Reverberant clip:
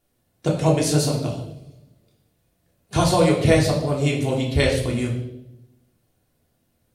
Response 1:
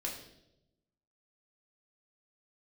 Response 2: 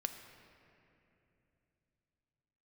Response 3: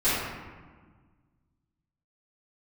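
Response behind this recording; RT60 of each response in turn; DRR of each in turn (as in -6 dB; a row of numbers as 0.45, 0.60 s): 1; 0.85, 2.9, 1.5 s; -3.0, 6.5, -16.5 dB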